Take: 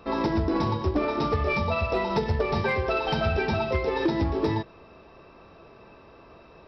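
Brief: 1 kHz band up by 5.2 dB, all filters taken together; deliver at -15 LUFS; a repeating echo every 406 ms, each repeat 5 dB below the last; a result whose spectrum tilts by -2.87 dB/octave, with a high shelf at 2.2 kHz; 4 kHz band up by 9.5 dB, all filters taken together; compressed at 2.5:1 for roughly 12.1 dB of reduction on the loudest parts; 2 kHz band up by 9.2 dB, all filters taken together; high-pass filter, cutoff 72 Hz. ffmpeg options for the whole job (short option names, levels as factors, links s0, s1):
-af "highpass=72,equalizer=f=1000:t=o:g=3.5,equalizer=f=2000:t=o:g=7,highshelf=f=2200:g=3,equalizer=f=4000:t=o:g=6.5,acompressor=threshold=0.0158:ratio=2.5,aecho=1:1:406|812|1218|1624|2030|2436|2842:0.562|0.315|0.176|0.0988|0.0553|0.031|0.0173,volume=7.08"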